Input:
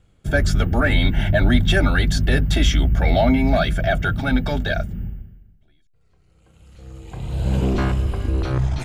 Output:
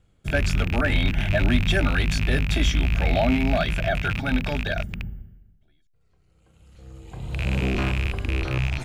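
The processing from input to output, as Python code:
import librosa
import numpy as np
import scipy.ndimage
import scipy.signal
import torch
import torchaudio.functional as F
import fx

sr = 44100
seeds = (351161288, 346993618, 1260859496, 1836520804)

y = fx.rattle_buzz(x, sr, strikes_db=-20.0, level_db=-13.0)
y = y * 10.0 ** (-4.5 / 20.0)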